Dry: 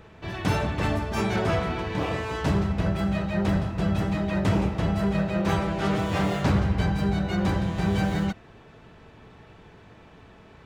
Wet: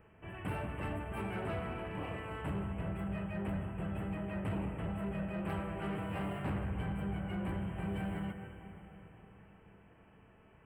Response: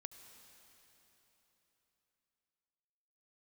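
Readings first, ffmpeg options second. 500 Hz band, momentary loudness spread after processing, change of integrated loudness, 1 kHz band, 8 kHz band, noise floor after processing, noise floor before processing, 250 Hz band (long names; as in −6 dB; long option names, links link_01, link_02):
−13.5 dB, 12 LU, −13.0 dB, −13.0 dB, below −15 dB, −62 dBFS, −51 dBFS, −13.0 dB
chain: -filter_complex "[0:a]asuperstop=centerf=5000:order=20:qfactor=1.1[link_01];[1:a]atrim=start_sample=2205[link_02];[link_01][link_02]afir=irnorm=-1:irlink=0,asoftclip=type=tanh:threshold=-22.5dB,volume=-6.5dB"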